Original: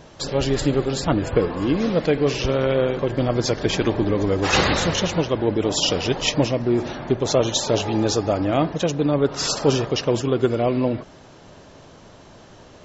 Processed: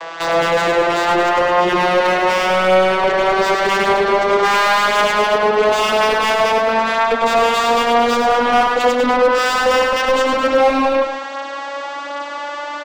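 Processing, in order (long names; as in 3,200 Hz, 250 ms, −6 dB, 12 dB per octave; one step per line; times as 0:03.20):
vocoder with a gliding carrier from E3, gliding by +10 semitones
high-pass filter 1,100 Hz 12 dB per octave
mid-hump overdrive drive 34 dB, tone 1,400 Hz, clips at −15 dBFS
on a send: loudspeakers that aren't time-aligned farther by 35 metres −6 dB, 74 metres −11 dB
on the sum: level +9 dB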